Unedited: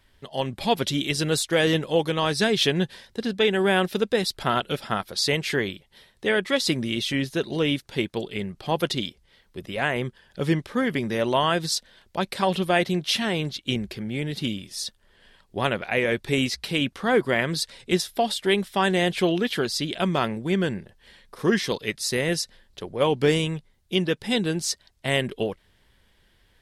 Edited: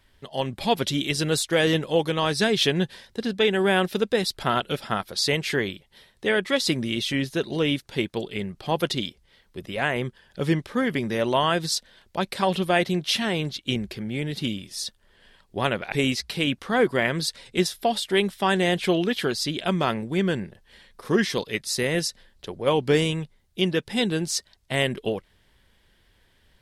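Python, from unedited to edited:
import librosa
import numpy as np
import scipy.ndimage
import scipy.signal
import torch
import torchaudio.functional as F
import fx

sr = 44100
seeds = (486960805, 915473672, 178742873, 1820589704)

y = fx.edit(x, sr, fx.cut(start_s=15.92, length_s=0.34), tone=tone)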